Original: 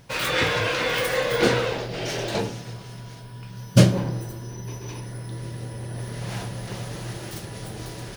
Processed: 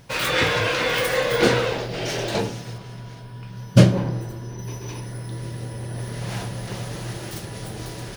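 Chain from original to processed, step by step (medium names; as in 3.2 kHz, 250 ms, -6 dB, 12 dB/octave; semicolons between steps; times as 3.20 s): 2.78–4.59 s: treble shelf 5.2 kHz -8.5 dB; trim +2 dB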